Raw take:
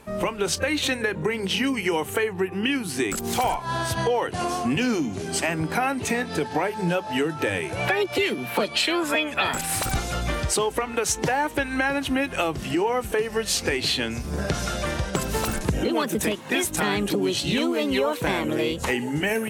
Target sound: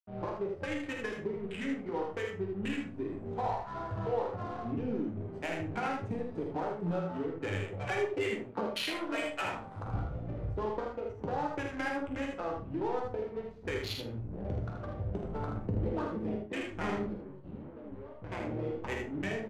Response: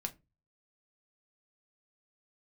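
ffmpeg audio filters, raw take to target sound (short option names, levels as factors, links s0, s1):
-filter_complex "[0:a]afwtdn=0.0562,asettb=1/sr,asplit=3[s0][s1][s2];[s0]atrim=end=5.974[s3];[s1]atrim=start=5.97:end=7.17,asetpts=PTS-STARTPTS,afade=t=in:d=0.004:c=qsin,afade=t=out:st=1.196:d=0.004:c=qsin,bass=f=250:g=3,treble=f=4000:g=13[s4];[s2]atrim=start=7.166[s5];[s3][s4]acrossfade=d=0.004:c1=hsin:c2=qsin[s6];[s6][s5]acrossfade=d=0.004:c1=qsin:c2=hsin,asettb=1/sr,asplit=3[s7][s8][s9];[s7]atrim=end=17.134[s10];[s8]atrim=start=17.13:end=18.32,asetpts=PTS-STARTPTS,afade=t=in:d=0.004:c=qsin,afade=t=out:st=1.186:d=0.004:c=qsin,acrossover=split=130[s11][s12];[s12]acompressor=threshold=0.02:ratio=5[s13];[s11][s13]amix=inputs=2:normalize=0[s14];[s9]atrim=start=18.316[s15];[s10][s14]acrossfade=d=0.004:c1=hsin:c2=qsin[s16];[s16][s15]acrossfade=d=0.004:c1=qsin:c2=hsin,aeval=exprs='sgn(val(0))*max(abs(val(0))-0.00944,0)':c=same,flanger=delay=0.7:depth=6.2:regen=-80:speed=0.81:shape=sinusoidal,adynamicsmooth=sensitivity=4:basefreq=1200,asplit=2[s17][s18];[s18]adelay=41,volume=0.211[s19];[s17][s19]amix=inputs=2:normalize=0,aecho=1:1:51|79:0.398|0.562[s20];[1:a]atrim=start_sample=2205,asetrate=24255,aresample=44100[s21];[s20][s21]afir=irnorm=-1:irlink=0,volume=0.376"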